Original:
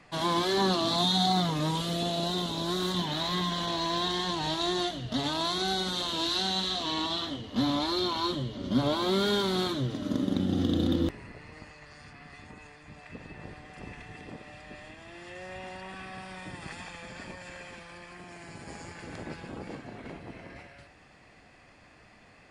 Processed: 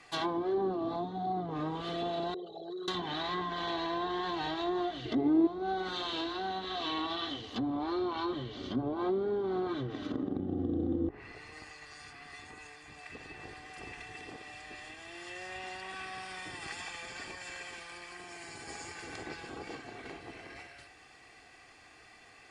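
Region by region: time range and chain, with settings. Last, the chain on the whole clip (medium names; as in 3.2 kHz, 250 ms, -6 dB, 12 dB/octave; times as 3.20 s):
2.34–2.88 s: resonances exaggerated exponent 3 + high-pass 280 Hz + static phaser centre 1 kHz, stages 6
5.05–5.47 s: doubling 13 ms -13.5 dB + small resonant body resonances 340/2100 Hz, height 18 dB, ringing for 40 ms
whole clip: low-pass that closes with the level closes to 540 Hz, closed at -23 dBFS; tilt EQ +2 dB/octave; comb 2.6 ms, depth 50%; trim -1.5 dB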